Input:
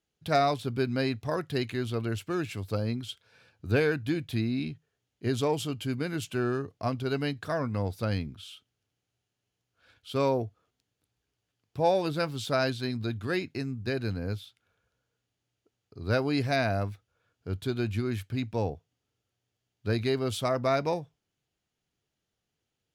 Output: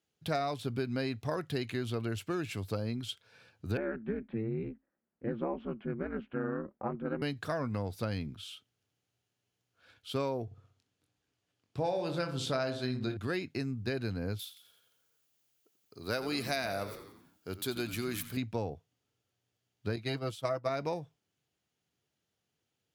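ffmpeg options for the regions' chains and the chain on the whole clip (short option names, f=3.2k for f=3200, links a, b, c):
-filter_complex "[0:a]asettb=1/sr,asplit=3[a][b][c];[a]atrim=end=3.774[d];[b]atrim=start=3.77:end=7.22,asetpts=PTS-STARTPTS,afade=t=in:d=0.004:c=qsin,afade=t=out:st=3.446:d=0.004:c=qsin,lowpass=f=1.8k:w=0.5412,lowpass=f=1.8k:w=1.3066,aeval=exprs='val(0)*sin(2*PI*110*n/s)':c=same[e];[c]atrim=start=7.216[f];[d][e]acrossfade=d=0.004:c1=hsin:c2=qsin[g];[g][f]acrossfade=d=0.004:c1=qsin:c2=hsin,asettb=1/sr,asplit=3[h][i][j];[h]atrim=end=10.454[k];[i]atrim=start=10.45:end=13.17,asetpts=PTS-STARTPTS,afade=t=in:d=0.004:c=qsin,afade=t=out:st=2.716:d=0.004:c=qsin,lowpass=10k,asplit=2[l][m];[m]adelay=23,volume=-7.5dB[n];[l][n]amix=inputs=2:normalize=0,atrim=end_sample=119952,asplit=2[o][p];[p]adelay=63,lowpass=f=1.3k:p=1,volume=-8.5dB,asplit=2[q][r];[r]adelay=63,lowpass=f=1.3k:p=1,volume=0.47,asplit=2[s][t];[t]adelay=63,lowpass=f=1.3k:p=1,volume=0.47,asplit=2[u][v];[v]adelay=63,lowpass=f=1.3k:p=1,volume=0.47,asplit=2[w][x];[x]adelay=63,lowpass=f=1.3k:p=1,volume=0.47[y];[o][q][s][u][w][y]amix=inputs=6:normalize=0,atrim=end_sample=119952[z];[j]atrim=start=13.166[aa];[k][z]acrossfade=d=0.004:c1=hsin:c2=qsin[ab];[ab][aa]acrossfade=d=0.004:c1=qsin:c2=hsin,asettb=1/sr,asplit=3[ac][ad][ae];[ac]atrim=end=14.394[af];[ad]atrim=start=14.39:end=18.37,asetpts=PTS-STARTPTS,afade=t=in:d=0.004:c=qsin,afade=t=out:st=3.976:d=0.004:c=qsin,aemphasis=mode=production:type=bsi,asplit=7[ag][ah][ai][aj][ak][al][am];[ah]adelay=87,afreqshift=-69,volume=-13dB[an];[ai]adelay=174,afreqshift=-138,volume=-18dB[ao];[aj]adelay=261,afreqshift=-207,volume=-23.1dB[ap];[ak]adelay=348,afreqshift=-276,volume=-28.1dB[aq];[al]adelay=435,afreqshift=-345,volume=-33.1dB[ar];[am]adelay=522,afreqshift=-414,volume=-38.2dB[as];[ag][an][ao][ap][aq][ar][as]amix=inputs=7:normalize=0,atrim=end_sample=175518[at];[ae]atrim=start=18.366[au];[af][at]acrossfade=d=0.004:c1=hsin:c2=qsin[av];[av][au]acrossfade=d=0.004:c1=qsin:c2=hsin,asettb=1/sr,asplit=3[aw][ax][ay];[aw]atrim=end=19.964[az];[ax]atrim=start=19.96:end=20.69,asetpts=PTS-STARTPTS,afade=t=in:d=0.004:c=qsin,afade=t=out:st=0.726:d=0.004:c=qsin,agate=range=-33dB:threshold=-26dB:ratio=3:release=100:detection=peak,aecho=1:1:6.2:0.67,atrim=end_sample=32193[ba];[ay]atrim=start=20.686[bb];[az][ba]acrossfade=d=0.004:c1=hsin:c2=qsin[bc];[bc][bb]acrossfade=d=0.004:c1=qsin:c2=hsin,highpass=84,acompressor=threshold=-30dB:ratio=5"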